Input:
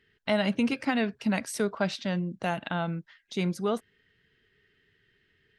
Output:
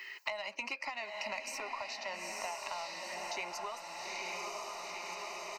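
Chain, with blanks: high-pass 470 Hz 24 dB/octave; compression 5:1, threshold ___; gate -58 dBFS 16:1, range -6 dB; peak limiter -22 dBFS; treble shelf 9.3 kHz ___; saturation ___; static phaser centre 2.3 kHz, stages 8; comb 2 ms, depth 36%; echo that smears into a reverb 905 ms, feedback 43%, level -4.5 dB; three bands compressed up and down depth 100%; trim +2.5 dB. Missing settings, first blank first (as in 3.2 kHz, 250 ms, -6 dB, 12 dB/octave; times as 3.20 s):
-34 dBFS, +3 dB, -26 dBFS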